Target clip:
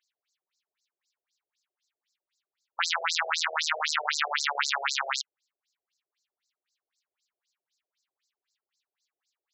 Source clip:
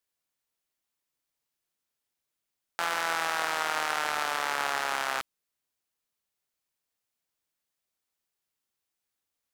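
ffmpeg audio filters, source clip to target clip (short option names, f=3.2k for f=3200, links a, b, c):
-af "tiltshelf=f=1.1k:g=-7,aeval=exprs='val(0)+0.00224*(sin(2*PI*60*n/s)+sin(2*PI*2*60*n/s)/2+sin(2*PI*3*60*n/s)/3+sin(2*PI*4*60*n/s)/4+sin(2*PI*5*60*n/s)/5)':c=same,afftfilt=real='re*between(b*sr/1024,500*pow(5700/500,0.5+0.5*sin(2*PI*3.9*pts/sr))/1.41,500*pow(5700/500,0.5+0.5*sin(2*PI*3.9*pts/sr))*1.41)':imag='im*between(b*sr/1024,500*pow(5700/500,0.5+0.5*sin(2*PI*3.9*pts/sr))/1.41,500*pow(5700/500,0.5+0.5*sin(2*PI*3.9*pts/sr))*1.41)':win_size=1024:overlap=0.75,volume=6.5dB"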